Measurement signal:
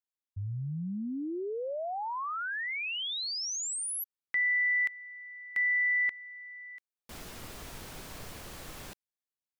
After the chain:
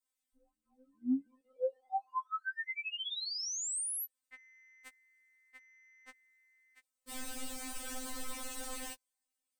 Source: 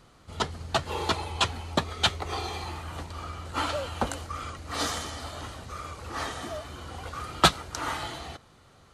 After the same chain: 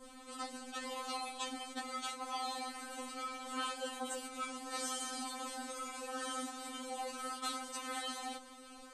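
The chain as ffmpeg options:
-af "equalizer=f=8400:t=o:w=0.26:g=11.5,areverse,acompressor=threshold=0.00891:ratio=5:attack=2.4:release=37:knee=6:detection=rms,areverse,adynamicequalizer=threshold=0.00282:dfrequency=2300:dqfactor=0.84:tfrequency=2300:tqfactor=0.84:attack=5:release=100:ratio=0.375:range=1.5:mode=cutabove:tftype=bell,afftfilt=real='re*3.46*eq(mod(b,12),0)':imag='im*3.46*eq(mod(b,12),0)':win_size=2048:overlap=0.75,volume=2"

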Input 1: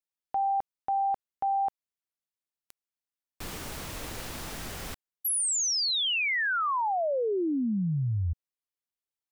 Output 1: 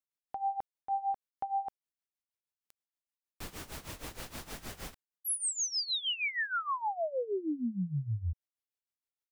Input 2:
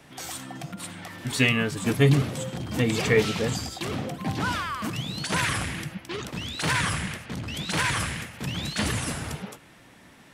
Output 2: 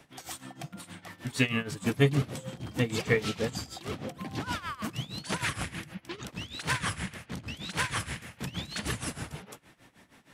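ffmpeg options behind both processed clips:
-af "tremolo=f=6.4:d=0.85,volume=0.75"

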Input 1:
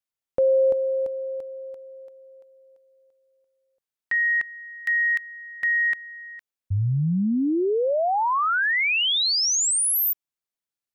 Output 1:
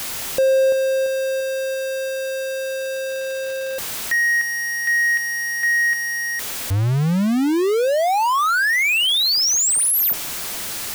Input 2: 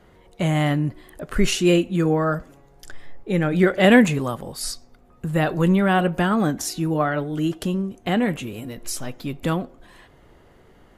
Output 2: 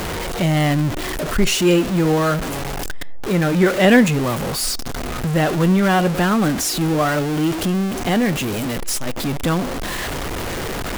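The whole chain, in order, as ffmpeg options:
-af "aeval=exprs='val(0)+0.5*0.106*sgn(val(0))':c=same"

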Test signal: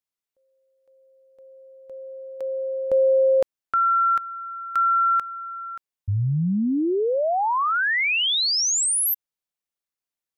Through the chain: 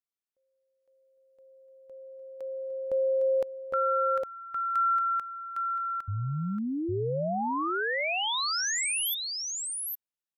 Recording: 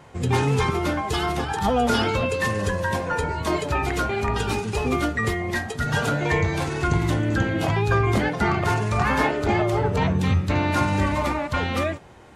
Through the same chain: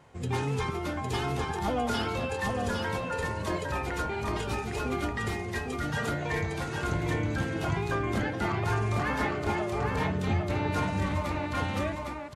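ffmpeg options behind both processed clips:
-af "aecho=1:1:808:0.668,volume=0.355"

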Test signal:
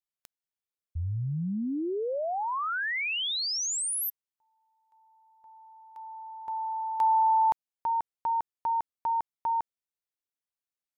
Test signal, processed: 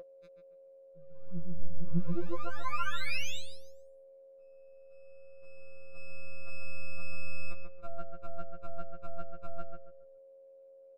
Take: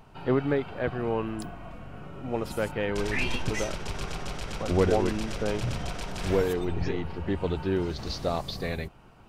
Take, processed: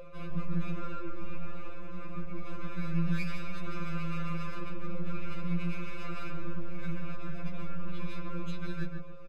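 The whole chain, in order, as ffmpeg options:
-filter_complex "[0:a]aemphasis=mode=production:type=riaa,highpass=f=160:t=q:w=0.5412,highpass=f=160:t=q:w=1.307,lowpass=f=2700:t=q:w=0.5176,lowpass=f=2700:t=q:w=0.7071,lowpass=f=2700:t=q:w=1.932,afreqshift=-240,lowshelf=f=320:g=9.5,areverse,acompressor=threshold=0.0178:ratio=6:attack=0.16:release=23:knee=1:detection=rms,areverse,aeval=exprs='max(val(0),0)':c=same,aecho=1:1:0.8:0.72,asplit=2[s0][s1];[s1]adelay=139,lowpass=f=1700:p=1,volume=0.668,asplit=2[s2][s3];[s3]adelay=139,lowpass=f=1700:p=1,volume=0.29,asplit=2[s4][s5];[s5]adelay=139,lowpass=f=1700:p=1,volume=0.29,asplit=2[s6][s7];[s7]adelay=139,lowpass=f=1700:p=1,volume=0.29[s8];[s0][s2][s4][s6][s8]amix=inputs=5:normalize=0,aeval=exprs='val(0)+0.00891*sin(2*PI*540*n/s)':c=same,asuperstop=centerf=890:order=4:qfactor=5.3,afftfilt=real='re*2.83*eq(mod(b,8),0)':imag='im*2.83*eq(mod(b,8),0)':win_size=2048:overlap=0.75,volume=1.58"

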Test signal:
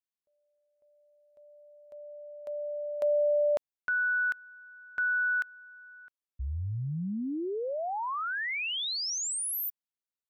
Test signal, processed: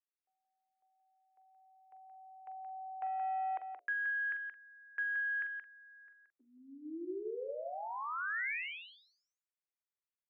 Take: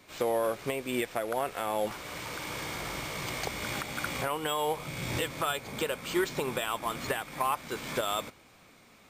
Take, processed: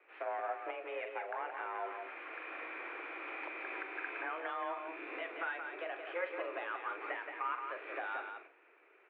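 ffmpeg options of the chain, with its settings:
-filter_complex "[0:a]equalizer=f=670:w=0.75:g=-6,aeval=exprs='clip(val(0),-1,0.0335)':c=same,lowshelf=f=500:g=-4.5,bandreject=f=60:t=h:w=6,bandreject=f=120:t=h:w=6,bandreject=f=180:t=h:w=6,bandreject=f=240:t=h:w=6,bandreject=f=300:t=h:w=6,bandreject=f=360:t=h:w=6,bandreject=f=420:t=h:w=6,bandreject=f=480:t=h:w=6,bandreject=f=540:t=h:w=6,highpass=f=150:t=q:w=0.5412,highpass=f=150:t=q:w=1.307,lowpass=f=2200:t=q:w=0.5176,lowpass=f=2200:t=q:w=0.7071,lowpass=f=2200:t=q:w=1.932,afreqshift=170,asplit=2[s0][s1];[s1]adelay=44,volume=0.282[s2];[s0][s2]amix=inputs=2:normalize=0,aecho=1:1:175:0.501,volume=0.75"

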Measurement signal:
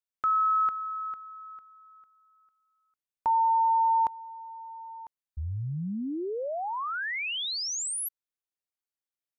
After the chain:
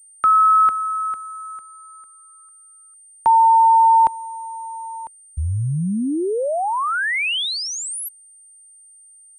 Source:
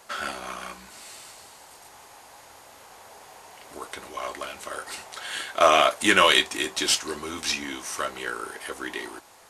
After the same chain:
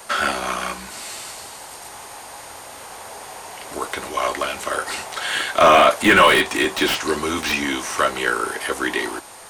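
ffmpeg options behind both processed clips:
-filter_complex "[0:a]acrossover=split=3300[s0][s1];[s1]acompressor=threshold=0.0112:ratio=4:attack=1:release=60[s2];[s0][s2]amix=inputs=2:normalize=0,apsyclip=7.08,acrossover=split=350|530|2800[s3][s4][s5][s6];[s6]aeval=exprs='0.158*(abs(mod(val(0)/0.158+3,4)-2)-1)':c=same[s7];[s3][s4][s5][s7]amix=inputs=4:normalize=0,aeval=exprs='val(0)+0.0112*sin(2*PI*8800*n/s)':c=same,volume=0.501"

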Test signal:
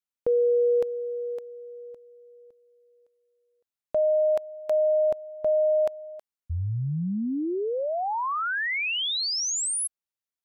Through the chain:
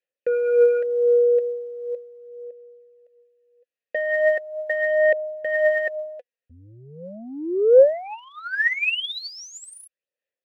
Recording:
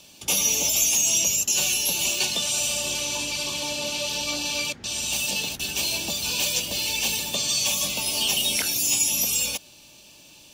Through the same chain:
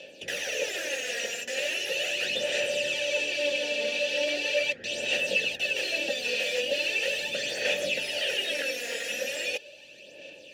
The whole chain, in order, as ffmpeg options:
-filter_complex "[0:a]aeval=exprs='0.398*sin(PI/2*5.01*val(0)/0.398)':c=same,asplit=3[s0][s1][s2];[s0]bandpass=f=530:t=q:w=8,volume=1[s3];[s1]bandpass=f=1840:t=q:w=8,volume=0.501[s4];[s2]bandpass=f=2480:t=q:w=8,volume=0.355[s5];[s3][s4][s5]amix=inputs=3:normalize=0,aphaser=in_gain=1:out_gain=1:delay=4.3:decay=0.5:speed=0.39:type=sinusoidal,volume=0.75"

